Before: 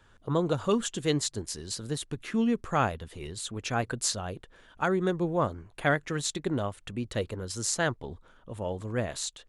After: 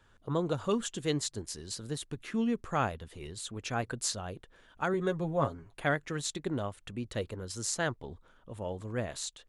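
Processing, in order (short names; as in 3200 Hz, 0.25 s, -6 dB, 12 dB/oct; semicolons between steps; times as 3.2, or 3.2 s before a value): 4.93–5.74 comb 7.3 ms, depth 64%; gain -4 dB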